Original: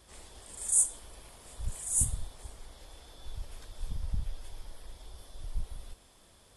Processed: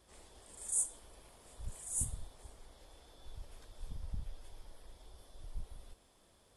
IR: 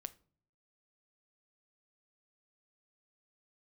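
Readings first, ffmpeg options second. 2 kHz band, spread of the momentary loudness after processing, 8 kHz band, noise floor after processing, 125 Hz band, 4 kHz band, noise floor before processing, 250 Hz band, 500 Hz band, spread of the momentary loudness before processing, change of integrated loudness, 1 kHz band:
-7.5 dB, 24 LU, -8.5 dB, -67 dBFS, -8.0 dB, -8.0 dB, -60 dBFS, -6.0 dB, -4.5 dB, 25 LU, -8.5 dB, -6.0 dB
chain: -af "equalizer=f=440:t=o:w=2.7:g=4,volume=0.376"

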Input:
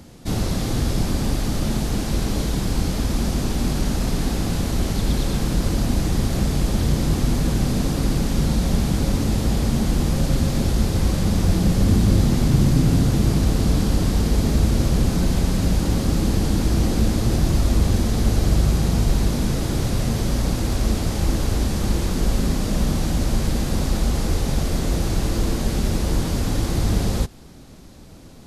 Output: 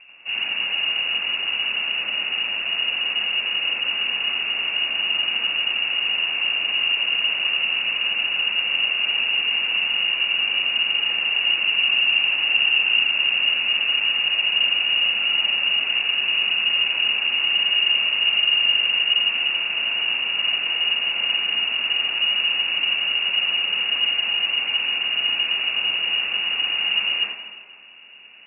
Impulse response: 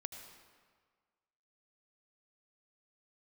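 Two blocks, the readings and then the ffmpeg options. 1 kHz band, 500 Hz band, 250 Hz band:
-4.5 dB, -15.0 dB, under -25 dB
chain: -filter_complex "[0:a]lowpass=f=2500:t=q:w=0.5098,lowpass=f=2500:t=q:w=0.6013,lowpass=f=2500:t=q:w=0.9,lowpass=f=2500:t=q:w=2.563,afreqshift=-2900,asplit=2[s0][s1];[s1]lowshelf=f=160:t=q:w=3:g=-6[s2];[1:a]atrim=start_sample=2205,lowpass=1700,adelay=84[s3];[s2][s3]afir=irnorm=-1:irlink=0,volume=2.24[s4];[s0][s4]amix=inputs=2:normalize=0,volume=0.631"

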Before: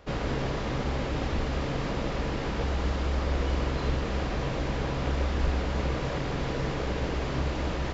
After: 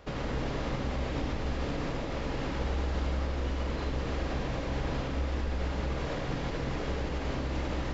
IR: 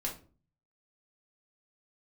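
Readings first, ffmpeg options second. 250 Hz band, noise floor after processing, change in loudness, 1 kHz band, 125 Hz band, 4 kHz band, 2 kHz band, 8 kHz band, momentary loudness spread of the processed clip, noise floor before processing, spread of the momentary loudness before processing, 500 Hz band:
-3.0 dB, -35 dBFS, -3.5 dB, -4.0 dB, -3.5 dB, -4.0 dB, -3.5 dB, no reading, 2 LU, -32 dBFS, 2 LU, -3.5 dB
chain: -filter_complex "[0:a]alimiter=level_in=1.26:limit=0.0631:level=0:latency=1:release=144,volume=0.794,asplit=2[s0][s1];[1:a]atrim=start_sample=2205,adelay=77[s2];[s1][s2]afir=irnorm=-1:irlink=0,volume=0.531[s3];[s0][s3]amix=inputs=2:normalize=0"

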